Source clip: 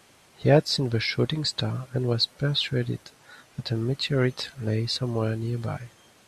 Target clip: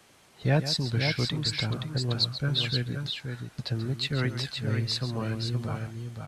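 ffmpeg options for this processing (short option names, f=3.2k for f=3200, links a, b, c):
-filter_complex "[0:a]acrossover=split=270|700|1800[a][b][c][d];[b]acompressor=threshold=-43dB:ratio=6[e];[a][e][c][d]amix=inputs=4:normalize=0,aecho=1:1:136|522:0.251|0.501,volume=-2dB"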